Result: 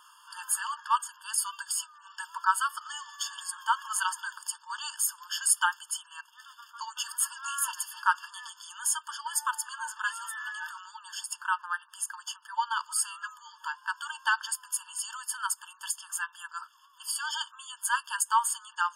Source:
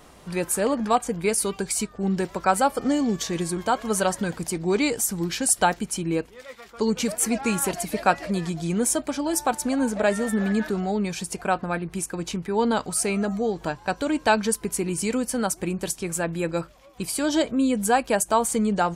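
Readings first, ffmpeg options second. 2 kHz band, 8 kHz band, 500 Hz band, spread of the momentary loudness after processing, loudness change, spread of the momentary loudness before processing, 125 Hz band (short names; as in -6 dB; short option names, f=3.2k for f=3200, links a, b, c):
-1.5 dB, -3.5 dB, under -40 dB, 14 LU, -6.5 dB, 7 LU, under -40 dB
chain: -af "afftfilt=real='re*eq(mod(floor(b*sr/1024/900),2),1)':imag='im*eq(mod(floor(b*sr/1024/900),2),1)':win_size=1024:overlap=0.75"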